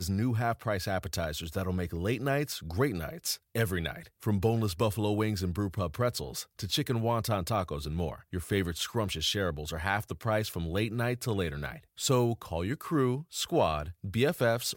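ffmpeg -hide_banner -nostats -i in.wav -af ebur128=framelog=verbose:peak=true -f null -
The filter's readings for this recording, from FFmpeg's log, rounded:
Integrated loudness:
  I:         -31.3 LUFS
  Threshold: -41.3 LUFS
Loudness range:
  LRA:         1.6 LU
  Threshold: -51.5 LUFS
  LRA low:   -32.2 LUFS
  LRA high:  -30.7 LUFS
True peak:
  Peak:      -13.1 dBFS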